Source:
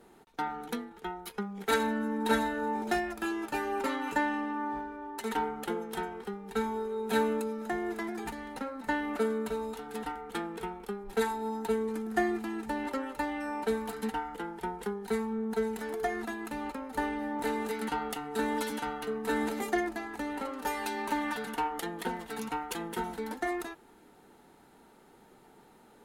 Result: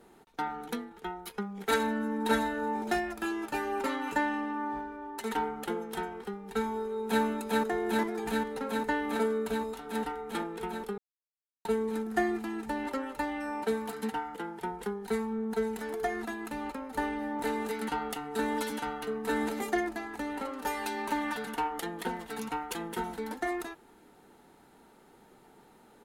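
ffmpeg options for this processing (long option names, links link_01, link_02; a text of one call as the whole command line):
ffmpeg -i in.wav -filter_complex "[0:a]asplit=2[link_01][link_02];[link_02]afade=type=in:start_time=6.7:duration=0.01,afade=type=out:start_time=7.23:duration=0.01,aecho=0:1:400|800|1200|1600|2000|2400|2800|3200|3600|4000|4400|4800:0.891251|0.757563|0.643929|0.547339|0.465239|0.395453|0.336135|0.285715|0.242857|0.206429|0.175464|0.149145[link_03];[link_01][link_03]amix=inputs=2:normalize=0,asettb=1/sr,asplit=3[link_04][link_05][link_06];[link_04]atrim=end=13.624[link_07];[link_05]atrim=start=13.62:end=14.71,asetpts=PTS-STARTPTS,afade=type=in:duration=0.004:curve=qsin,afade=type=out:start_time=1.086:duration=0.004:curve=qsin,highpass=76[link_08];[link_06]atrim=start=14.706[link_09];[link_07][link_08]acrossfade=duration=0.004:curve1=hsin:curve2=qsin[link_10];[link_10][link_09]acrossfade=duration=0.004:curve1=qsin:curve2=hsin,asplit=3[link_11][link_12][link_13];[link_11]atrim=end=10.98,asetpts=PTS-STARTPTS,afade=type=out:start_time=10.976:duration=0.004:curve=hsin[link_14];[link_12]atrim=start=10.98:end=11.65,asetpts=PTS-STARTPTS,volume=0[link_15];[link_13]atrim=start=11.65,asetpts=PTS-STARTPTS,afade=type=in:duration=0.004:curve=hsin[link_16];[link_14][link_15][link_16]concat=n=3:v=0:a=1" out.wav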